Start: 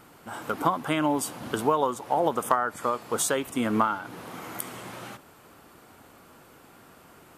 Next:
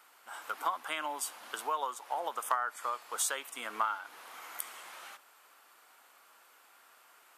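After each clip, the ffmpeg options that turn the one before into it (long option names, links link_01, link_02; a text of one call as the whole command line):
ffmpeg -i in.wav -af "highpass=980,volume=-4.5dB" out.wav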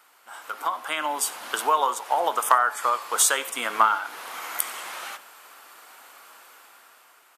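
ffmpeg -i in.wav -filter_complex "[0:a]bandreject=frequency=107.1:width_type=h:width=4,bandreject=frequency=214.2:width_type=h:width=4,bandreject=frequency=321.3:width_type=h:width=4,bandreject=frequency=428.4:width_type=h:width=4,bandreject=frequency=535.5:width_type=h:width=4,bandreject=frequency=642.6:width_type=h:width=4,bandreject=frequency=749.7:width_type=h:width=4,bandreject=frequency=856.8:width_type=h:width=4,bandreject=frequency=963.9:width_type=h:width=4,bandreject=frequency=1071:width_type=h:width=4,bandreject=frequency=1178.1:width_type=h:width=4,bandreject=frequency=1285.2:width_type=h:width=4,bandreject=frequency=1392.3:width_type=h:width=4,bandreject=frequency=1499.4:width_type=h:width=4,bandreject=frequency=1606.5:width_type=h:width=4,bandreject=frequency=1713.6:width_type=h:width=4,bandreject=frequency=1820.7:width_type=h:width=4,bandreject=frequency=1927.8:width_type=h:width=4,bandreject=frequency=2034.9:width_type=h:width=4,bandreject=frequency=2142:width_type=h:width=4,bandreject=frequency=2249.1:width_type=h:width=4,bandreject=frequency=2356.2:width_type=h:width=4,bandreject=frequency=2463.3:width_type=h:width=4,bandreject=frequency=2570.4:width_type=h:width=4,bandreject=frequency=2677.5:width_type=h:width=4,bandreject=frequency=2784.6:width_type=h:width=4,bandreject=frequency=2891.7:width_type=h:width=4,bandreject=frequency=2998.8:width_type=h:width=4,bandreject=frequency=3105.9:width_type=h:width=4,bandreject=frequency=3213:width_type=h:width=4,bandreject=frequency=3320.1:width_type=h:width=4,bandreject=frequency=3427.2:width_type=h:width=4,bandreject=frequency=3534.3:width_type=h:width=4,dynaudnorm=framelen=300:gausssize=7:maxgain=9.5dB,asplit=3[link_01][link_02][link_03];[link_02]adelay=93,afreqshift=-59,volume=-22dB[link_04];[link_03]adelay=186,afreqshift=-118,volume=-31.9dB[link_05];[link_01][link_04][link_05]amix=inputs=3:normalize=0,volume=3.5dB" out.wav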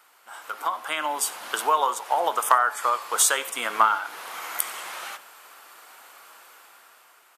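ffmpeg -i in.wav -af "equalizer=frequency=260:width=4.4:gain=-4" out.wav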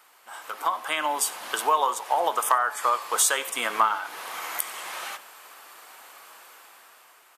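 ffmpeg -i in.wav -filter_complex "[0:a]bandreject=frequency=1400:width=16,asplit=2[link_01][link_02];[link_02]alimiter=limit=-13.5dB:level=0:latency=1:release=372,volume=2.5dB[link_03];[link_01][link_03]amix=inputs=2:normalize=0,volume=-6dB" out.wav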